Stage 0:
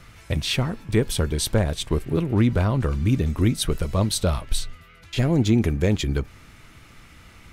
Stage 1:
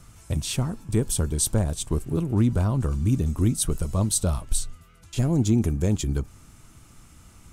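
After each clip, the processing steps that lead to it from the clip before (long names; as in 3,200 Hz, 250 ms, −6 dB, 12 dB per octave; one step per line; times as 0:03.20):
octave-band graphic EQ 500/2,000/4,000/8,000 Hz −5/−11/−6/+8 dB
level −1 dB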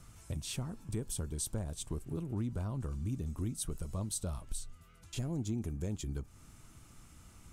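downward compressor 2 to 1, threshold −34 dBFS, peak gain reduction 10 dB
level −6 dB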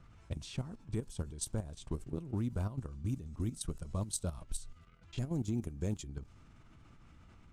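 bit-depth reduction 12 bits, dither none
output level in coarse steps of 12 dB
low-pass that shuts in the quiet parts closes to 2,700 Hz, open at −33.5 dBFS
level +3 dB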